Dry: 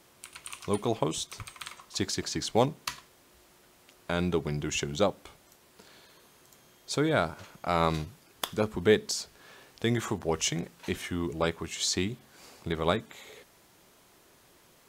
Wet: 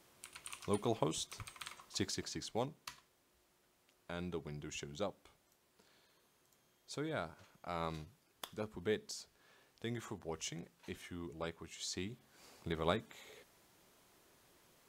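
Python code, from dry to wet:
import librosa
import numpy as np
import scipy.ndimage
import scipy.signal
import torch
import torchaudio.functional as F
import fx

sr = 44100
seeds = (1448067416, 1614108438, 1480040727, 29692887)

y = fx.gain(x, sr, db=fx.line((1.96, -7.0), (2.63, -14.5), (11.84, -14.5), (12.59, -8.0)))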